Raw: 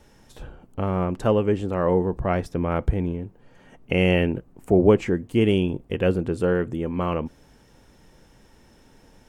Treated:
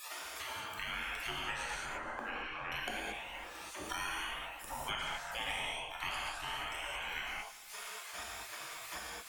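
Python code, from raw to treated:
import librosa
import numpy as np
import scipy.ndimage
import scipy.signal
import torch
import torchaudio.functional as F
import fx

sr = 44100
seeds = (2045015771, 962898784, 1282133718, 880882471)

p1 = fx.spec_ripple(x, sr, per_octave=1.9, drift_hz=2.5, depth_db=16)
p2 = fx.spec_gate(p1, sr, threshold_db=-30, keep='weak')
p3 = fx.lowpass(p2, sr, hz=1600.0, slope=12, at=(1.76, 2.72))
p4 = fx.schmitt(p3, sr, flips_db=-36.0)
p5 = p3 + (p4 * librosa.db_to_amplitude(-11.0))
p6 = p5 * (1.0 - 0.48 / 2.0 + 0.48 / 2.0 * np.cos(2.0 * np.pi * 1.8 * (np.arange(len(p5)) / sr)))
p7 = p6 + fx.echo_feedback(p6, sr, ms=149, feedback_pct=45, wet_db=-21, dry=0)
p8 = fx.rev_gated(p7, sr, seeds[0], gate_ms=250, shape='flat', drr_db=-5.0)
p9 = fx.band_squash(p8, sr, depth_pct=100)
y = p9 * librosa.db_to_amplitude(2.0)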